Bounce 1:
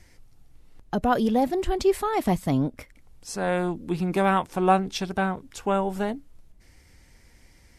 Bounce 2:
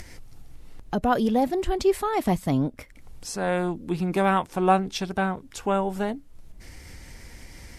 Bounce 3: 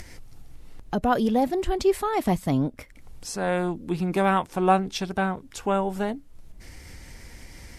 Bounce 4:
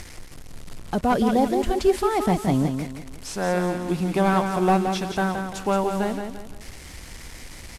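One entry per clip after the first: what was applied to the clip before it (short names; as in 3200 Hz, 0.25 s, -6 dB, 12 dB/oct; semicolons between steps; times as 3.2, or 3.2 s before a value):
upward compressor, threshold -31 dBFS
nothing audible
delta modulation 64 kbps, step -37.5 dBFS; on a send: feedback echo 0.172 s, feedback 37%, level -6.5 dB; on the sum: gain +1.5 dB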